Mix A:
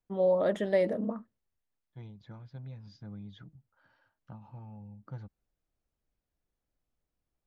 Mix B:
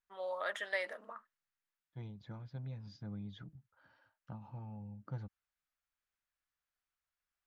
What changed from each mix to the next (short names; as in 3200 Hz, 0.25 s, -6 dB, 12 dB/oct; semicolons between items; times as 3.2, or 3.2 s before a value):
first voice: add resonant high-pass 1400 Hz, resonance Q 1.6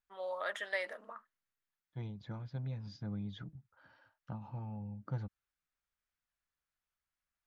second voice +4.0 dB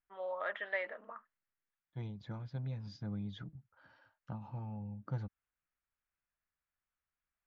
first voice: add LPF 2800 Hz 24 dB/oct